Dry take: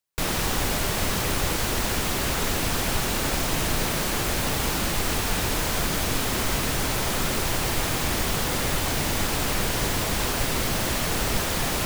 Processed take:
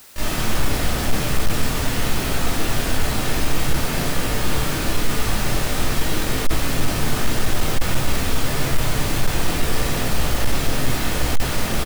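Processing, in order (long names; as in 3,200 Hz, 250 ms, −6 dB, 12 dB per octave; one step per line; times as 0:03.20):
pitch-shifted copies added −12 semitones −8 dB, −7 semitones −11 dB, +3 semitones 0 dB
rectangular room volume 400 cubic metres, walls mixed, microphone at 2.6 metres
bit-depth reduction 6 bits, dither triangular
level −9 dB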